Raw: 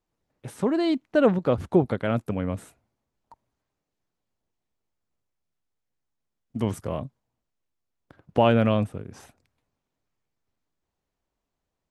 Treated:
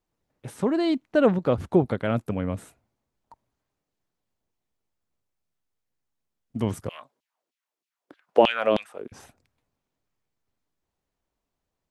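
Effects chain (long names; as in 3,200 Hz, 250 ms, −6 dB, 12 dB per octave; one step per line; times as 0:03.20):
0:06.89–0:09.12: auto-filter high-pass saw down 3.2 Hz 250–3,400 Hz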